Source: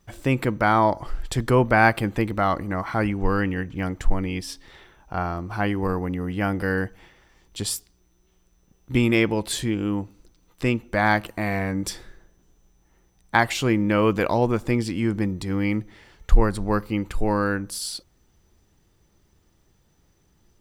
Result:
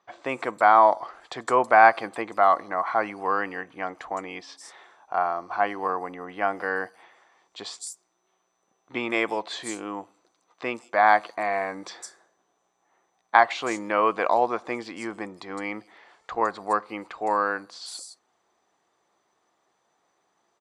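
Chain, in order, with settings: speaker cabinet 500–8000 Hz, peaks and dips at 720 Hz +8 dB, 1100 Hz +7 dB, 2900 Hz -5 dB, 5300 Hz -5 dB; bands offset in time lows, highs 0.16 s, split 5600 Hz; gain -1 dB

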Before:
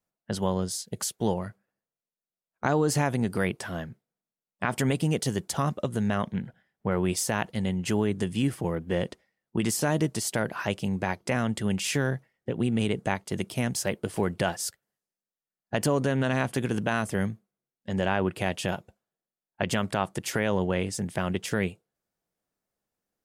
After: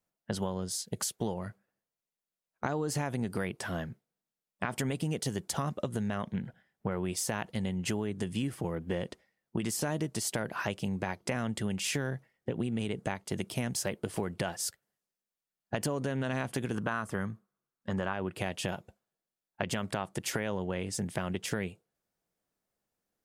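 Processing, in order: 16.75–18.13 EQ curve 760 Hz 0 dB, 1200 Hz +10 dB, 2200 Hz -3 dB; compressor, threshold -29 dBFS, peak gain reduction 11 dB

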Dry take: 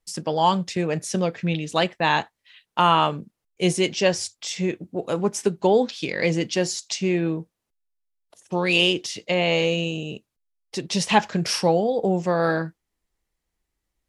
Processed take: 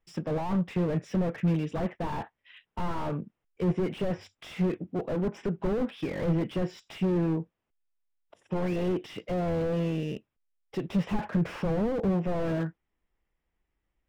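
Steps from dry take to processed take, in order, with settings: treble ducked by the level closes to 2100 Hz, closed at -17.5 dBFS; polynomial smoothing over 25 samples; slew limiter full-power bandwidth 19 Hz

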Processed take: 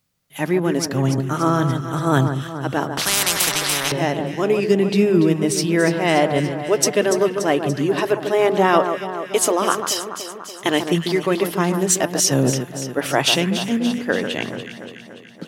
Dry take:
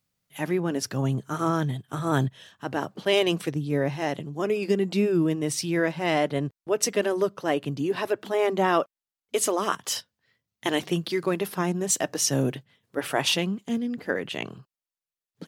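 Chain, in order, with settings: on a send: echo with dull and thin repeats by turns 0.144 s, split 1600 Hz, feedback 76%, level -7.5 dB; 2.97–3.92 on the sum: spectral compressor 10:1; gain +6.5 dB

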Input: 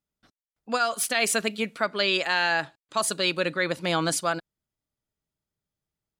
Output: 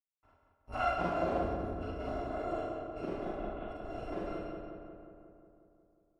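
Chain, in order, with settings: FFT order left unsorted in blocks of 256 samples; 3.25–3.68 steep low-pass 3800 Hz 96 dB/oct; in parallel at -3 dB: limiter -19.5 dBFS, peak gain reduction 9 dB; on the sum: bit-crush 10-bit; on a send: darkening echo 0.18 s, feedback 68%, low-pass 2600 Hz, level -4 dB; on the sum: Schroeder reverb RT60 0.79 s, combs from 33 ms, DRR -4.5 dB; low-pass sweep 930 Hz -> 440 Hz, 0.55–1.65; gain -3 dB

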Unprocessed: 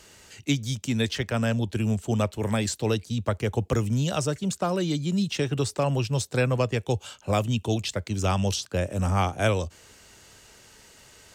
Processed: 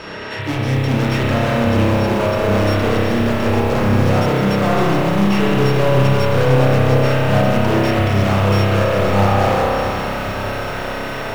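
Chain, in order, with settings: sample sorter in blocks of 8 samples; LPF 6000 Hz 12 dB/oct; tilt -2 dB/oct; in parallel at -2 dB: level quantiser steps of 10 dB; on the sum: overdrive pedal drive 42 dB, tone 2200 Hz, clips at -5.5 dBFS; swelling echo 89 ms, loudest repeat 5, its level -16.5 dB; spring tank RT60 3 s, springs 30 ms, chirp 35 ms, DRR -5.5 dB; lo-fi delay 0.413 s, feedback 80%, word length 4-bit, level -11 dB; gain -10 dB

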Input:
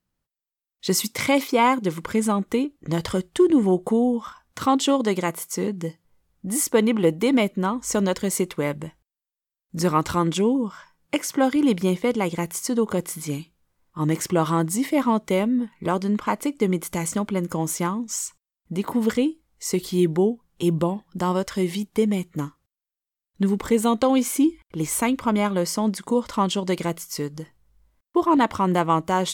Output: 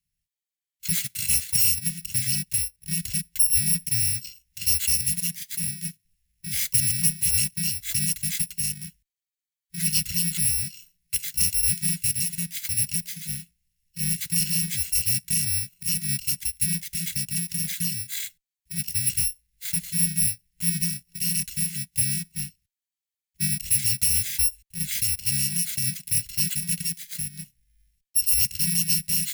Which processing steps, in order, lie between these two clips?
FFT order left unsorted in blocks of 128 samples; elliptic band-stop 180–1900 Hz, stop band 40 dB; added harmonics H 5 -32 dB, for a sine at -5 dBFS; gain -2.5 dB

